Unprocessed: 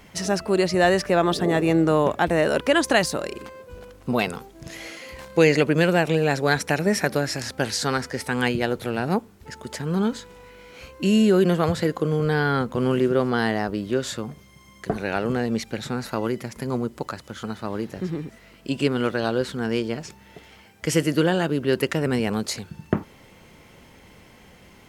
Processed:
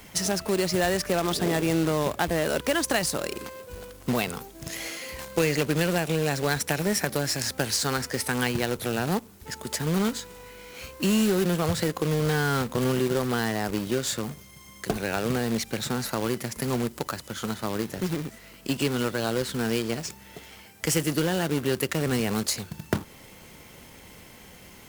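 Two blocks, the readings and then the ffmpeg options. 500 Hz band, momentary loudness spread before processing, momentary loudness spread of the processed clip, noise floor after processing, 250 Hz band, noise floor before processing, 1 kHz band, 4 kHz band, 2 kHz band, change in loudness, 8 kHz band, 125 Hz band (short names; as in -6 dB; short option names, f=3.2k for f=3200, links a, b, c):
-5.0 dB, 15 LU, 15 LU, -49 dBFS, -4.0 dB, -51 dBFS, -4.5 dB, 0.0 dB, -4.0 dB, -4.0 dB, +4.0 dB, -2.5 dB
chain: -filter_complex "[0:a]crystalizer=i=1.5:c=0,acrossover=split=130[a][b];[b]acompressor=threshold=-25dB:ratio=2.5[c];[a][c]amix=inputs=2:normalize=0,acrusher=bits=2:mode=log:mix=0:aa=0.000001"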